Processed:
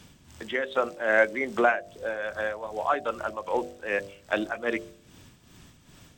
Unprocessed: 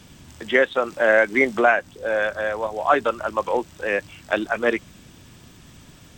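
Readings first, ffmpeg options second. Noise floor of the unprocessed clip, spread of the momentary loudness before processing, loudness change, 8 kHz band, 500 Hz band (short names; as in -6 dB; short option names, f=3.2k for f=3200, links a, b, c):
-48 dBFS, 9 LU, -6.5 dB, n/a, -7.0 dB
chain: -af "tremolo=f=2.5:d=0.64,bandreject=f=49.44:t=h:w=4,bandreject=f=98.88:t=h:w=4,bandreject=f=148.32:t=h:w=4,bandreject=f=197.76:t=h:w=4,bandreject=f=247.2:t=h:w=4,bandreject=f=296.64:t=h:w=4,bandreject=f=346.08:t=h:w=4,bandreject=f=395.52:t=h:w=4,bandreject=f=444.96:t=h:w=4,bandreject=f=494.4:t=h:w=4,bandreject=f=543.84:t=h:w=4,bandreject=f=593.28:t=h:w=4,bandreject=f=642.72:t=h:w=4,bandreject=f=692.16:t=h:w=4,bandreject=f=741.6:t=h:w=4,volume=-3dB"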